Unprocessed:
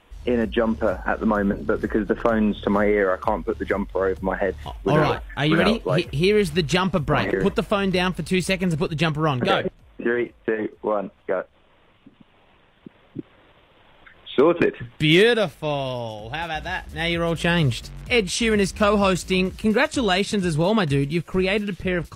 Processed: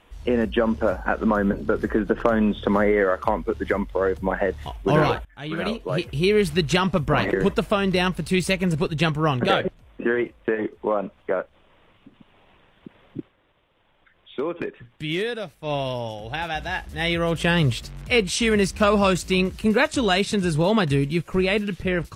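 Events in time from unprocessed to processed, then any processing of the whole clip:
5.25–6.42 s: fade in, from -21 dB
13.19–15.74 s: dip -10.5 dB, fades 0.13 s

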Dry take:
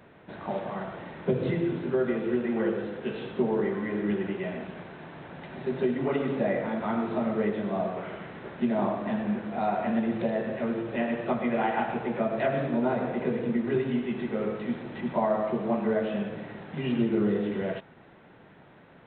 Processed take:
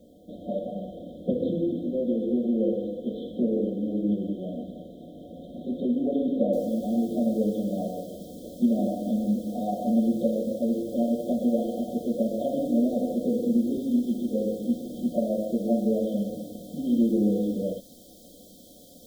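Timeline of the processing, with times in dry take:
6.53 s: noise floor step -68 dB -49 dB
whole clip: FFT band-reject 740–3100 Hz; treble shelf 2.2 kHz -8.5 dB; comb 3.8 ms, depth 99%

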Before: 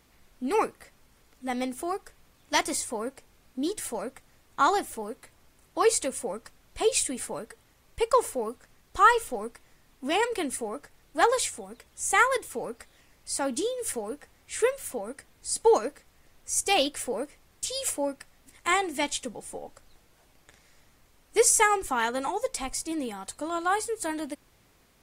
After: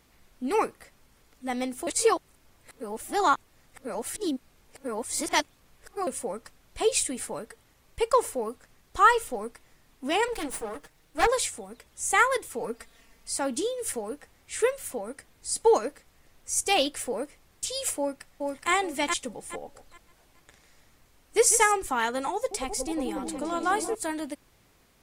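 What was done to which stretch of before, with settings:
1.87–6.07 s: reverse
10.28–11.27 s: comb filter that takes the minimum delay 6.4 ms
12.60–13.30 s: comb 4.4 ms, depth 68%
17.98–18.71 s: echo throw 420 ms, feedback 25%, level -2.5 dB
19.60–21.72 s: delay 147 ms -12 dB
22.33–23.95 s: delay with an opening low-pass 181 ms, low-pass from 400 Hz, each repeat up 1 oct, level -3 dB

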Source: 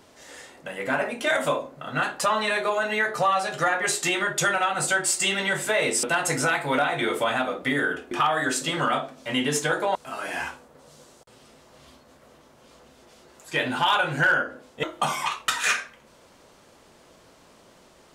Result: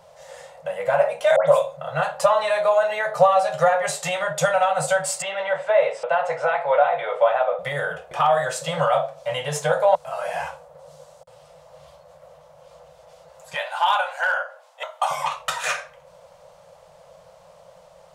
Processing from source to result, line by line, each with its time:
1.36–1.77 s: phase dispersion highs, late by 119 ms, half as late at 2 kHz
5.22–7.59 s: band-pass 370–2500 Hz
13.54–15.11 s: inverse Chebyshev high-pass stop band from 220 Hz, stop band 60 dB
whole clip: FFT filter 110 Hz 0 dB, 170 Hz +5 dB, 240 Hz -30 dB, 370 Hz -20 dB, 530 Hz +12 dB, 1.6 kHz -3 dB

